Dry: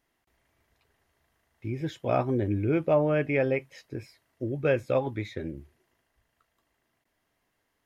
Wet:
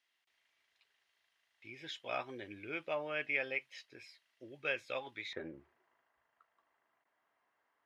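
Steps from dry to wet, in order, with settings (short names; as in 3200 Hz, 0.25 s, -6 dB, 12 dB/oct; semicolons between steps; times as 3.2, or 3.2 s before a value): band-pass 3300 Hz, Q 1.3, from 5.33 s 1100 Hz; gain +2 dB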